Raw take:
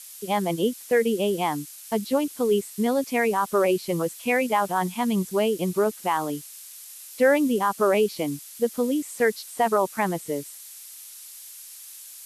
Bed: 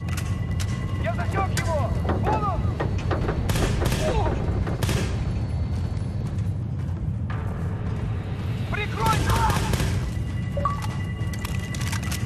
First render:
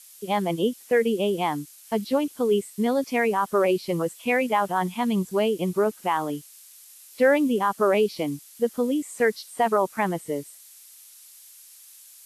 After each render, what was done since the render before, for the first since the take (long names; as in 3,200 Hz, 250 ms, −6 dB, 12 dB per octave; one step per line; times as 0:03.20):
noise reduction from a noise print 6 dB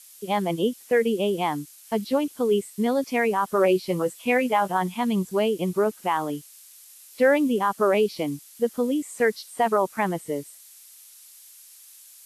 0:03.46–0:04.77: double-tracking delay 16 ms −9 dB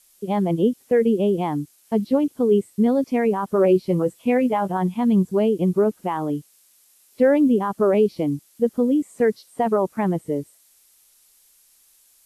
tilt shelving filter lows +8.5 dB, about 700 Hz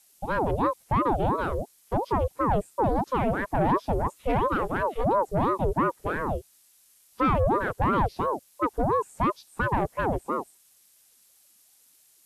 soft clipping −15.5 dBFS, distortion −15 dB
ring modulator whose carrier an LFO sweeps 510 Hz, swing 60%, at 2.9 Hz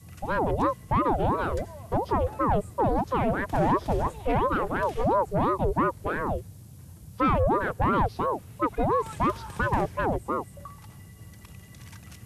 mix in bed −19 dB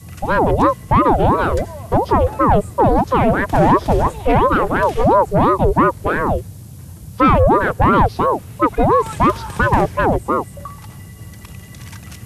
level +11 dB